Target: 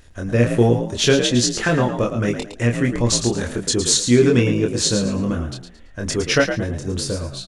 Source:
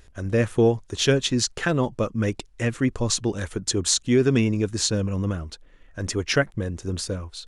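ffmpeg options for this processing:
ffmpeg -i in.wav -filter_complex "[0:a]asplit=2[link_01][link_02];[link_02]adelay=25,volume=-3.5dB[link_03];[link_01][link_03]amix=inputs=2:normalize=0,asplit=5[link_04][link_05][link_06][link_07][link_08];[link_05]adelay=111,afreqshift=49,volume=-8.5dB[link_09];[link_06]adelay=222,afreqshift=98,volume=-19dB[link_10];[link_07]adelay=333,afreqshift=147,volume=-29.4dB[link_11];[link_08]adelay=444,afreqshift=196,volume=-39.9dB[link_12];[link_04][link_09][link_10][link_11][link_12]amix=inputs=5:normalize=0,volume=3dB" out.wav

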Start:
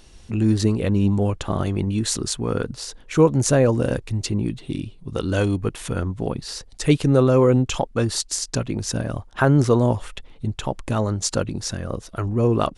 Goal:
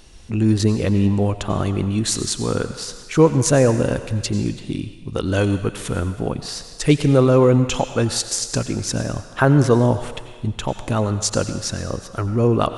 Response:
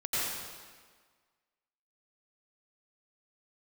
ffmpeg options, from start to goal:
-filter_complex "[0:a]asplit=2[link_01][link_02];[1:a]atrim=start_sample=2205,lowshelf=frequency=490:gain=-10[link_03];[link_02][link_03]afir=irnorm=-1:irlink=0,volume=-15.5dB[link_04];[link_01][link_04]amix=inputs=2:normalize=0,volume=1.5dB"

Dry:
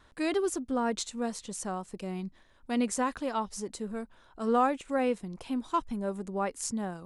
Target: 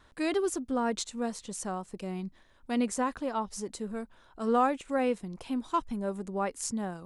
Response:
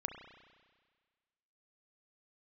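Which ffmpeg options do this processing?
-filter_complex "[0:a]asettb=1/sr,asplit=3[link_01][link_02][link_03];[link_01]atrim=end=1.044[link_04];[link_02]atrim=start=1.04:end=3.48,asetpts=PTS-STARTPTS,afade=type=in:duration=0.004:curve=qsin,afade=type=out:start_time=2.436:duration=0.004:curve=qsin,adynamicequalizer=threshold=0.00501:dfrequency=1600:dqfactor=0.7:tfrequency=1600:tqfactor=0.7:attack=5:release=100:ratio=0.375:range=3:mode=cutabove:tftype=highshelf[link_05];[link_03]atrim=start=3.476[link_06];[link_04][link_05]acrossfade=duration=0.004:curve1=hsin:curve2=qsin[link_07];[link_07][link_06]acrossfade=duration=0.004:curve1=qsin:curve2=hsin"

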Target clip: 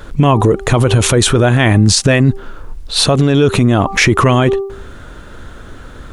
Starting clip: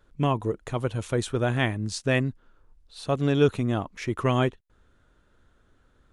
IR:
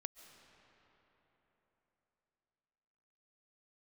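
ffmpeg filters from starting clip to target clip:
-af "bandreject=frequency=392.3:width_type=h:width=4,bandreject=frequency=784.6:width_type=h:width=4,bandreject=frequency=1176.9:width_type=h:width=4,acompressor=threshold=-25dB:ratio=6,alimiter=level_in=30.5dB:limit=-1dB:release=50:level=0:latency=1,volume=-1dB"

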